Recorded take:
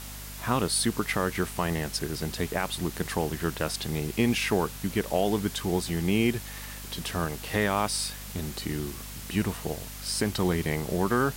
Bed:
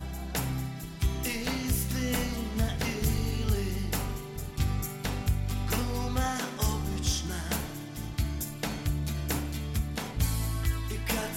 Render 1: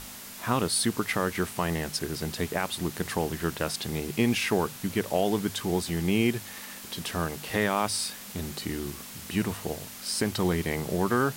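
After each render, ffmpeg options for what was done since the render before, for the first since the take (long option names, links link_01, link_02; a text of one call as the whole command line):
ffmpeg -i in.wav -af "bandreject=frequency=50:width_type=h:width=6,bandreject=frequency=100:width_type=h:width=6,bandreject=frequency=150:width_type=h:width=6" out.wav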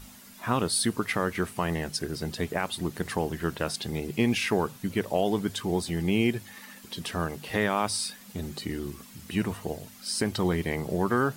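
ffmpeg -i in.wav -af "afftdn=noise_reduction=10:noise_floor=-43" out.wav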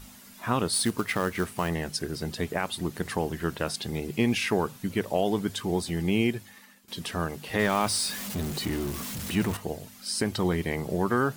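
ffmpeg -i in.wav -filter_complex "[0:a]asettb=1/sr,asplit=3[link_01][link_02][link_03];[link_01]atrim=end=0.734[link_04];[link_02]atrim=start=0.73:end=1.69,asetpts=PTS-STARTPTS,afade=type=in:duration=0.004:curve=qsin,afade=type=out:start_time=0.956:duration=0.004:curve=qsin,acrusher=bits=4:mode=log:mix=0:aa=0.000001[link_05];[link_03]atrim=start=1.686[link_06];[link_04][link_05]acrossfade=duration=0.004:curve1=hsin:curve2=qsin[link_07];[link_07][link_06]acrossfade=duration=0.004:curve1=qsin:curve2=hsin,asettb=1/sr,asplit=3[link_08][link_09][link_10];[link_08]atrim=end=7.594[link_11];[link_09]atrim=start=7.59:end=9.57,asetpts=PTS-STARTPTS,afade=type=in:duration=0.004:curve=qsin,afade=type=out:start_time=1.976:duration=0.004:curve=qsin,aeval=exprs='val(0)+0.5*0.0266*sgn(val(0))':channel_layout=same[link_12];[link_10]atrim=start=9.566[link_13];[link_11][link_12]acrossfade=duration=0.004:curve1=hsin:curve2=qsin[link_14];[link_14][link_13]acrossfade=duration=0.004:curve1=qsin:curve2=hsin,asplit=2[link_15][link_16];[link_15]atrim=end=6.88,asetpts=PTS-STARTPTS,afade=type=out:start_time=6.21:duration=0.67:silence=0.141254[link_17];[link_16]atrim=start=6.88,asetpts=PTS-STARTPTS,afade=type=in:duration=0.004:curve=hsin:silence=0.141254[link_18];[link_17][link_18]concat=n=2:v=0:a=1" out.wav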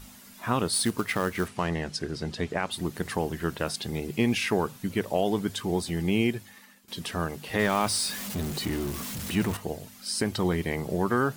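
ffmpeg -i in.wav -filter_complex "[0:a]asettb=1/sr,asplit=3[link_01][link_02][link_03];[link_01]atrim=end=1.484[link_04];[link_02]atrim=start=1.48:end=2.71,asetpts=PTS-STARTPTS,afade=type=in:duration=0.004:curve=qsin,afade=type=out:start_time=1.226:duration=0.004:curve=qsin,lowpass=6600[link_05];[link_03]atrim=start=2.706[link_06];[link_04][link_05]acrossfade=duration=0.004:curve1=hsin:curve2=qsin[link_07];[link_07][link_06]acrossfade=duration=0.004:curve1=qsin:curve2=hsin" out.wav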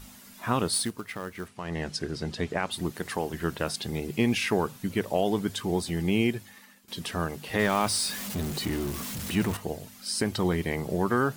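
ffmpeg -i in.wav -filter_complex "[0:a]asettb=1/sr,asplit=3[link_01][link_02][link_03];[link_01]atrim=end=2.924[link_04];[link_02]atrim=start=2.92:end=3.34,asetpts=PTS-STARTPTS,afade=type=in:duration=0.004:curve=qsin,afade=type=out:start_time=0.416:duration=0.004:curve=qsin,lowshelf=frequency=210:gain=-8[link_05];[link_03]atrim=start=3.336[link_06];[link_04][link_05]acrossfade=duration=0.004:curve1=hsin:curve2=qsin[link_07];[link_07][link_06]acrossfade=duration=0.004:curve1=qsin:curve2=hsin,asplit=3[link_08][link_09][link_10];[link_08]atrim=end=0.93,asetpts=PTS-STARTPTS,afade=type=out:start_time=0.75:duration=0.18:silence=0.354813[link_11];[link_09]atrim=start=0.93:end=1.64,asetpts=PTS-STARTPTS,volume=-9dB[link_12];[link_10]atrim=start=1.64,asetpts=PTS-STARTPTS,afade=type=in:duration=0.18:silence=0.354813[link_13];[link_11][link_12][link_13]concat=n=3:v=0:a=1" out.wav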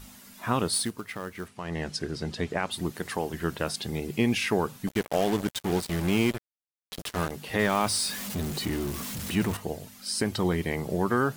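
ffmpeg -i in.wav -filter_complex "[0:a]asettb=1/sr,asplit=3[link_01][link_02][link_03];[link_01]atrim=end=4.874[link_04];[link_02]atrim=start=4.87:end=7.31,asetpts=PTS-STARTPTS,afade=type=in:duration=0.004:curve=qsin,afade=type=out:start_time=2.436:duration=0.004:curve=qsin,acrusher=bits=4:mix=0:aa=0.5[link_05];[link_03]atrim=start=7.306[link_06];[link_04][link_05]acrossfade=duration=0.004:curve1=hsin:curve2=qsin[link_07];[link_07][link_06]acrossfade=duration=0.004:curve1=qsin:curve2=hsin" out.wav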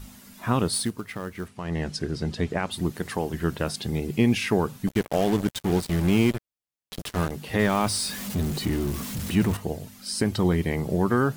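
ffmpeg -i in.wav -af "lowshelf=frequency=300:gain=7" out.wav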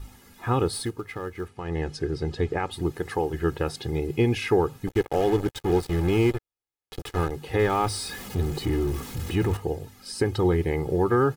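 ffmpeg -i in.wav -af "highshelf=frequency=2600:gain=-8.5,aecho=1:1:2.4:0.71" out.wav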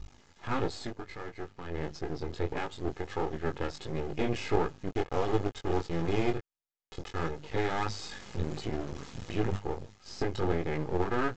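ffmpeg -i in.wav -af "flanger=delay=18:depth=4.3:speed=1.5,aresample=16000,aeval=exprs='max(val(0),0)':channel_layout=same,aresample=44100" out.wav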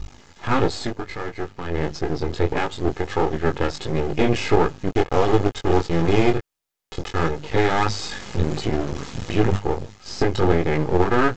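ffmpeg -i in.wav -af "volume=11.5dB,alimiter=limit=-3dB:level=0:latency=1" out.wav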